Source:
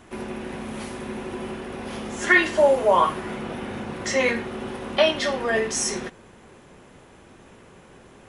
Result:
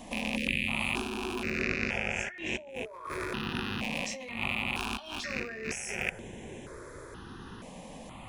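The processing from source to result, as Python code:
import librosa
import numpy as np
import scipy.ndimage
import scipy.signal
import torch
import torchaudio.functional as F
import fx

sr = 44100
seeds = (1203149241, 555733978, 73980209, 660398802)

y = fx.rattle_buzz(x, sr, strikes_db=-41.0, level_db=-16.0)
y = fx.spec_erase(y, sr, start_s=0.36, length_s=0.32, low_hz=560.0, high_hz=1600.0)
y = fx.lowpass(y, sr, hz=7200.0, slope=24, at=(1.63, 2.7))
y = fx.peak_eq(y, sr, hz=370.0, db=-11.5, octaves=1.2, at=(4.77, 5.39))
y = fx.over_compress(y, sr, threshold_db=-33.0, ratio=-1.0)
y = fx.phaser_held(y, sr, hz=2.1, low_hz=380.0, high_hz=4600.0)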